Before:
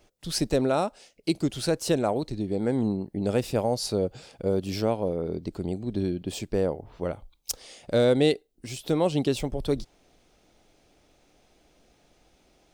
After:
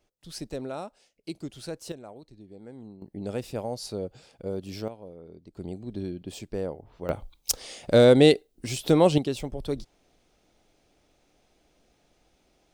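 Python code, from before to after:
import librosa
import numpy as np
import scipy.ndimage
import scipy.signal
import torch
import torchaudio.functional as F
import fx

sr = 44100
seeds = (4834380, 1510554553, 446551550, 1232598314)

y = fx.gain(x, sr, db=fx.steps((0.0, -11.0), (1.92, -19.0), (3.02, -7.0), (4.88, -16.5), (5.57, -6.0), (7.09, 5.0), (9.18, -4.0)))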